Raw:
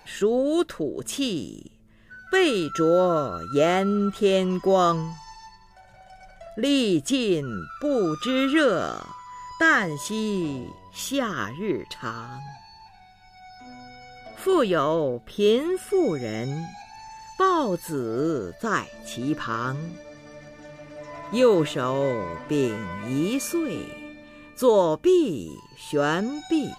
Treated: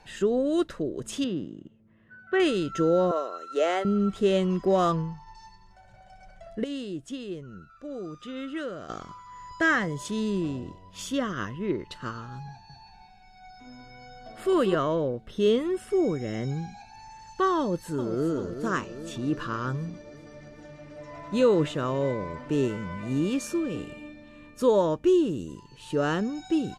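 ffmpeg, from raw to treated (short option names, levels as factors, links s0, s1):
-filter_complex "[0:a]asettb=1/sr,asplit=3[s0][s1][s2];[s0]atrim=end=1.244[s3];[s1]atrim=start=1.24:end=2.4,asetpts=PTS-STARTPTS,afade=t=in:d=0.004:c=qsin,afade=t=out:st=1.156:d=0.004:c=qsin,highpass=120,lowpass=2200[s4];[s2]atrim=start=2.396[s5];[s3][s4]acrossfade=d=0.004:c1=hsin:c2=qsin[s6];[s6][s5]acrossfade=d=0.004:c1=qsin:c2=hsin,asettb=1/sr,asplit=3[s7][s8][s9];[s7]atrim=end=3.114[s10];[s8]atrim=start=3.11:end=3.85,asetpts=PTS-STARTPTS,afade=t=in:d=0.004:c=qsin,afade=t=out:st=0.736:d=0.004:c=qsin,highpass=f=390:w=0.5412,highpass=f=390:w=1.3066[s11];[s9]atrim=start=3.846[s12];[s10][s11]acrossfade=d=0.004:c1=hsin:c2=qsin[s13];[s13][s12]acrossfade=d=0.004:c1=qsin:c2=hsin,asettb=1/sr,asplit=3[s14][s15][s16];[s14]atrim=end=4.654[s17];[s15]atrim=start=4.65:end=5.35,asetpts=PTS-STARTPTS,afade=t=in:d=0.004:c=qsin,afade=t=out:st=0.696:d=0.004:c=qsin,adynamicsmooth=sensitivity=6:basefreq=2500[s18];[s16]atrim=start=5.346[s19];[s17][s18]acrossfade=d=0.004:c1=hsin:c2=qsin[s20];[s20][s19]acrossfade=d=0.004:c1=qsin:c2=hsin,asettb=1/sr,asplit=3[s21][s22][s23];[s21]atrim=end=12.504[s24];[s22]atrim=start=12.5:end=14.75,asetpts=PTS-STARTPTS,afade=t=in:d=0.004:c=qsin,afade=t=out:st=2.246:d=0.004:c=qsin,aecho=1:1:195:0.631,atrim=end_sample=99225[s25];[s23]atrim=start=14.746[s26];[s24][s25]acrossfade=d=0.004:c1=hsin:c2=qsin[s27];[s27][s26]acrossfade=d=0.004:c1=qsin:c2=hsin,asplit=2[s28][s29];[s29]afade=t=in:st=17.59:d=0.01,afade=t=out:st=18.32:d=0.01,aecho=0:1:390|780|1170|1560|1950|2340|2730:0.354813|0.212888|0.127733|0.0766397|0.0459838|0.0275903|0.0165542[s30];[s28][s30]amix=inputs=2:normalize=0,asplit=3[s31][s32][s33];[s31]atrim=end=6.642[s34];[s32]atrim=start=6.638:end=8.892,asetpts=PTS-STARTPTS,volume=0.282[s35];[s33]atrim=start=8.888[s36];[s34][s35]acrossfade=d=0.004:c1=hsin:c2=hsin[s37];[s37][s36]acrossfade=d=0.004:c1=hsin:c2=hsin,lowpass=9200,lowshelf=f=320:g=6,volume=0.562"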